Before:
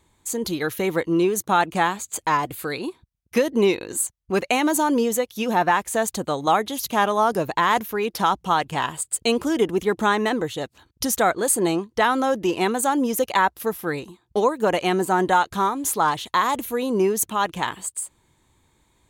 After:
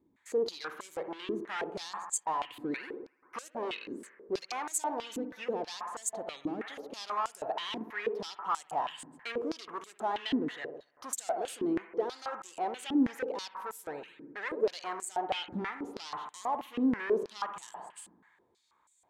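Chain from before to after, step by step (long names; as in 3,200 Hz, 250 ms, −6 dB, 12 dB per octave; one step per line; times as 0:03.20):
0:15.30–0:17.41: low-shelf EQ 470 Hz +11 dB
speech leveller within 5 dB 2 s
gain into a clipping stage and back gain 21 dB
bucket-brigade delay 63 ms, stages 1,024, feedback 75%, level −11.5 dB
band-pass on a step sequencer 6.2 Hz 280–7,700 Hz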